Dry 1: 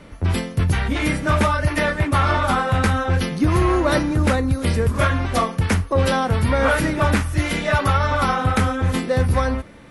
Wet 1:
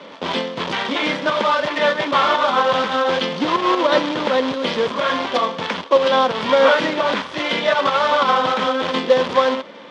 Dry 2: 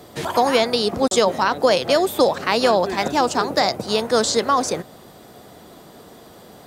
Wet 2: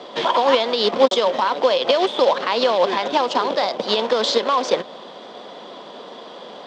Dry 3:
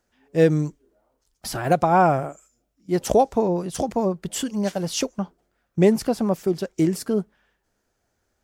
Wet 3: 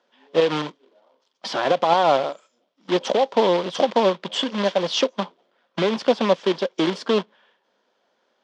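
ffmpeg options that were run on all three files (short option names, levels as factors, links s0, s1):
-filter_complex "[0:a]asplit=2[s0][s1];[s1]acompressor=threshold=0.0447:ratio=10,volume=0.841[s2];[s0][s2]amix=inputs=2:normalize=0,acrusher=bits=2:mode=log:mix=0:aa=0.000001,alimiter=limit=0.299:level=0:latency=1:release=67,highpass=f=220:w=0.5412,highpass=f=220:w=1.3066,equalizer=f=310:t=q:w=4:g=-4,equalizer=f=540:t=q:w=4:g=7,equalizer=f=1000:t=q:w=4:g=8,equalizer=f=3300:t=q:w=4:g=9,lowpass=f=5000:w=0.5412,lowpass=f=5000:w=1.3066,volume=0.891"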